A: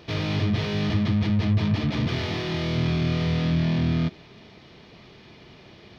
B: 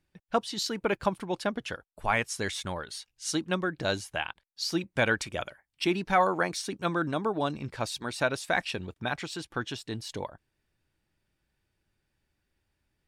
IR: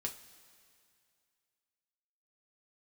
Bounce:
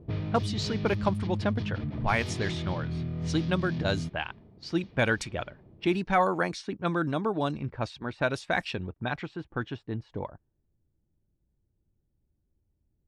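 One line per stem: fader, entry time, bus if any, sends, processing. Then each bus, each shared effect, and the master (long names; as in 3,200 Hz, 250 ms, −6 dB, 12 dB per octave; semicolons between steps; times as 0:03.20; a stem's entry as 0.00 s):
−6.0 dB, 0.00 s, no send, low-shelf EQ 260 Hz +11.5 dB; brickwall limiter −14.5 dBFS, peak gain reduction 10.5 dB; bass and treble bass −5 dB, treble +11 dB; automatic ducking −6 dB, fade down 0.25 s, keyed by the second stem
−1.0 dB, 0.00 s, no send, no processing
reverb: not used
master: low-pass that shuts in the quiet parts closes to 460 Hz, open at −24.5 dBFS; low-shelf EQ 230 Hz +6.5 dB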